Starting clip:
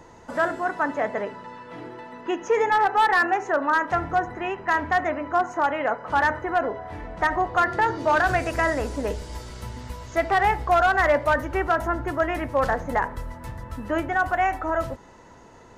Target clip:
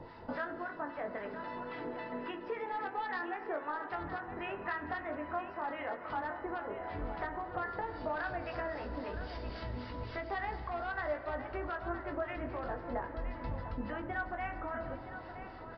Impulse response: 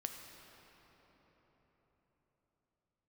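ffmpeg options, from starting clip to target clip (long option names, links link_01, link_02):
-filter_complex "[0:a]acompressor=threshold=-35dB:ratio=5,acrossover=split=940[link_01][link_02];[link_01]aeval=exprs='val(0)*(1-0.7/2+0.7/2*cos(2*PI*3.7*n/s))':channel_layout=same[link_03];[link_02]aeval=exprs='val(0)*(1-0.7/2-0.7/2*cos(2*PI*3.7*n/s))':channel_layout=same[link_04];[link_03][link_04]amix=inputs=2:normalize=0,aecho=1:1:967:0.282,asplit=2[link_05][link_06];[1:a]atrim=start_sample=2205,lowpass=2400,adelay=20[link_07];[link_06][link_07]afir=irnorm=-1:irlink=0,volume=-1.5dB[link_08];[link_05][link_08]amix=inputs=2:normalize=0,aresample=11025,aresample=44100"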